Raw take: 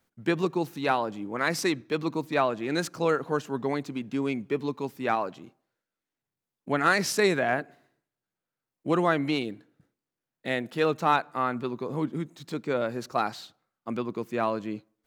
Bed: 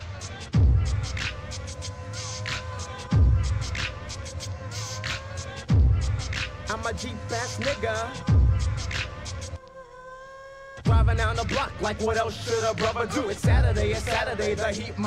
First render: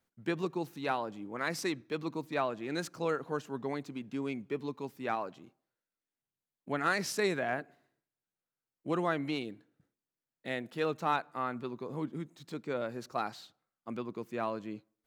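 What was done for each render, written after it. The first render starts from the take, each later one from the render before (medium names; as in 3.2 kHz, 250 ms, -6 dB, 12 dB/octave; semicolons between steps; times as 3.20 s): trim -7.5 dB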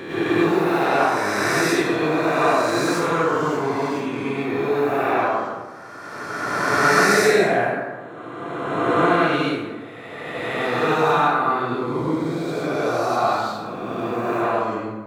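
reverse spectral sustain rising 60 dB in 2.36 s; plate-style reverb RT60 1.3 s, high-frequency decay 0.5×, pre-delay 85 ms, DRR -9.5 dB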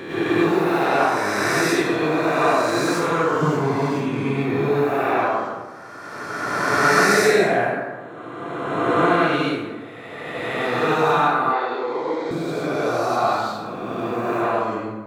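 3.41–4.84 s: peaking EQ 150 Hz +9.5 dB 1 oct; 11.53–12.31 s: cabinet simulation 480–6600 Hz, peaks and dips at 480 Hz +9 dB, 820 Hz +7 dB, 1.2 kHz -4 dB, 1.9 kHz +6 dB, 4.2 kHz +3 dB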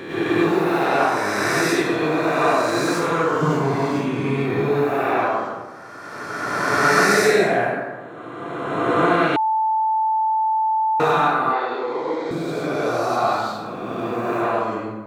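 3.47–4.62 s: doubling 31 ms -5.5 dB; 9.36–11.00 s: bleep 878 Hz -16.5 dBFS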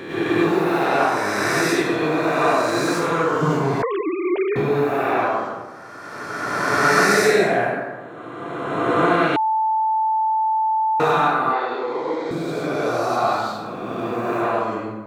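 3.82–4.56 s: formants replaced by sine waves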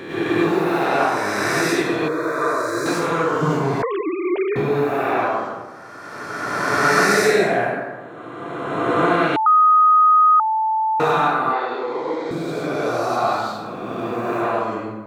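2.08–2.86 s: static phaser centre 770 Hz, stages 6; 9.46–10.40 s: bleep 1.25 kHz -9.5 dBFS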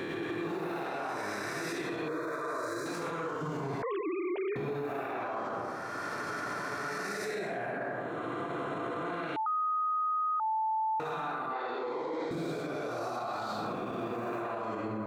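reverse; compression 5:1, threshold -28 dBFS, peak gain reduction 15 dB; reverse; peak limiter -27.5 dBFS, peak gain reduction 10 dB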